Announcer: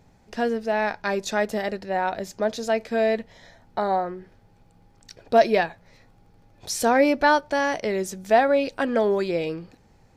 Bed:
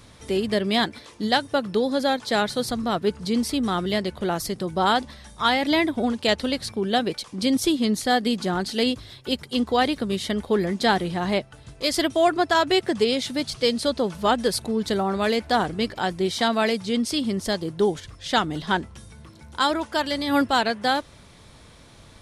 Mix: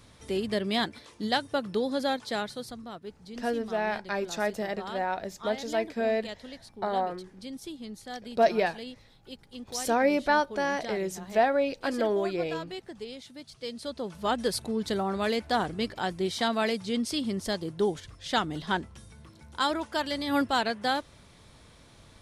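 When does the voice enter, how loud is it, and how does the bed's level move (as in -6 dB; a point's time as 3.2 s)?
3.05 s, -5.5 dB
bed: 2.15 s -6 dB
3.04 s -19 dB
13.43 s -19 dB
14.43 s -5.5 dB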